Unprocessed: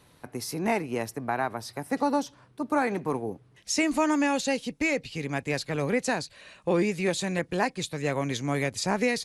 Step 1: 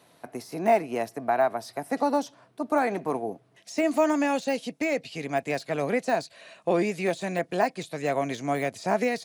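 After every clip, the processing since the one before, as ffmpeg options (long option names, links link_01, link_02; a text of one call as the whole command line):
ffmpeg -i in.wav -af "highpass=180,deesser=0.9,equalizer=frequency=670:width_type=o:width=0.22:gain=12.5" out.wav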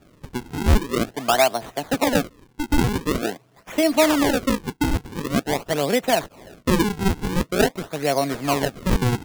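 ffmpeg -i in.wav -af "acrusher=samples=42:mix=1:aa=0.000001:lfo=1:lforange=67.2:lforate=0.46,volume=5.5dB" out.wav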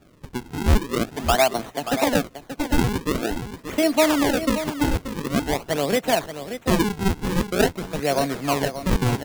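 ffmpeg -i in.wav -af "aecho=1:1:581:0.299,volume=-1dB" out.wav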